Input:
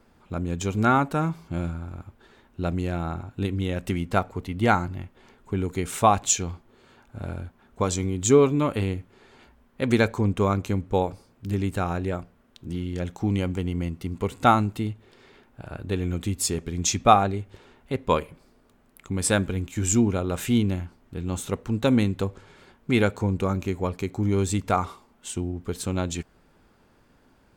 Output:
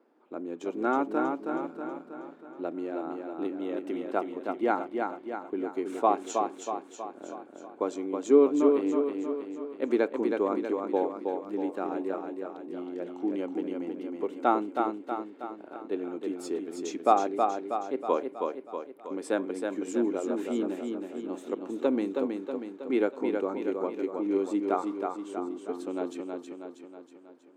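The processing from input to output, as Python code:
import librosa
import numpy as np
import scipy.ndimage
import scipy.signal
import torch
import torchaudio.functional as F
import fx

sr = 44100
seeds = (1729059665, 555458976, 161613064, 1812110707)

p1 = scipy.signal.sosfilt(scipy.signal.ellip(4, 1.0, 80, 300.0, 'highpass', fs=sr, output='sos'), x)
p2 = fx.tilt_eq(p1, sr, slope=-4.5)
p3 = p2 + fx.echo_feedback(p2, sr, ms=320, feedback_pct=54, wet_db=-4.5, dry=0)
y = p3 * librosa.db_to_amplitude(-7.0)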